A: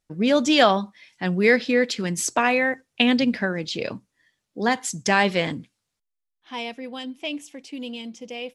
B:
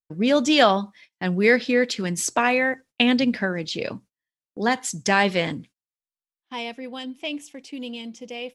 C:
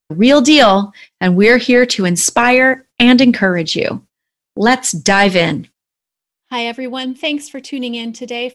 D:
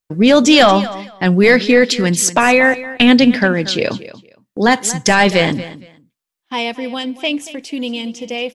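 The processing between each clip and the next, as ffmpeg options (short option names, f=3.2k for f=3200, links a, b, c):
-af "agate=range=-27dB:threshold=-46dB:ratio=16:detection=peak"
-af "apsyclip=14dB,volume=-2dB"
-af "aecho=1:1:232|464:0.158|0.0301,volume=-1dB"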